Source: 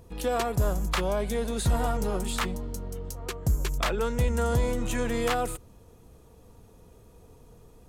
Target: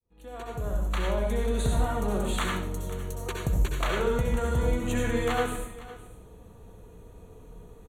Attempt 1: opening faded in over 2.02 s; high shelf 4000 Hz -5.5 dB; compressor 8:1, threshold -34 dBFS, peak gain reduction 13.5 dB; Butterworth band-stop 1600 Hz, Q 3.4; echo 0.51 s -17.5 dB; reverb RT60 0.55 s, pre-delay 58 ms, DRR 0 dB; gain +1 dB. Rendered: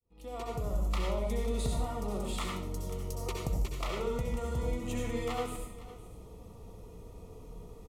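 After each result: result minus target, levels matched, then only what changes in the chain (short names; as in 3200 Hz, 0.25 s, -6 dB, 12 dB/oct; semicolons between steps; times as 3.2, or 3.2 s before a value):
compressor: peak gain reduction +7.5 dB; 2000 Hz band -4.0 dB
change: compressor 8:1, threshold -25.5 dBFS, peak gain reduction 6 dB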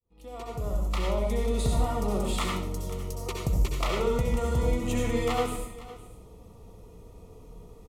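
2000 Hz band -4.0 dB
change: Butterworth band-stop 5100 Hz, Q 3.4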